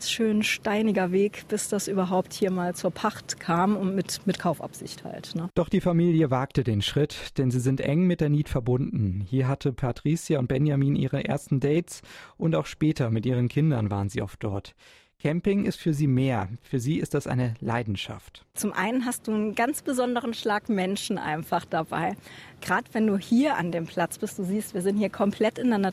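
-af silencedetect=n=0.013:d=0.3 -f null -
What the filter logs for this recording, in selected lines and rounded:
silence_start: 14.69
silence_end: 15.25 | silence_duration: 0.56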